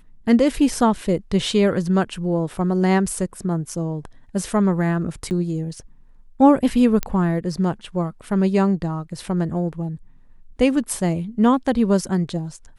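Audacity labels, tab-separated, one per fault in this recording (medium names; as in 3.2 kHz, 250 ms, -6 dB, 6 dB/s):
5.300000	5.310000	dropout 8.9 ms
7.030000	7.030000	pop -8 dBFS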